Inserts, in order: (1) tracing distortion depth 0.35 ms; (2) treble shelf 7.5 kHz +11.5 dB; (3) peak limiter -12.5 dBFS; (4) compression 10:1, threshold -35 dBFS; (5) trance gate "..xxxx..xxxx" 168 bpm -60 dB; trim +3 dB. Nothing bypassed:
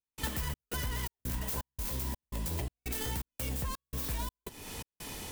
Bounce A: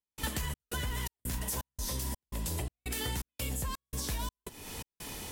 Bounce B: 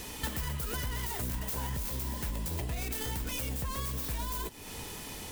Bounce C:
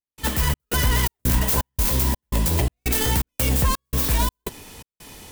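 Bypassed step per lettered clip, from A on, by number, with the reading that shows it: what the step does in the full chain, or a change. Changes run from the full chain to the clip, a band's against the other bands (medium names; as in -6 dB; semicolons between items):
1, 8 kHz band +3.0 dB; 5, crest factor change -2.0 dB; 4, mean gain reduction 12.0 dB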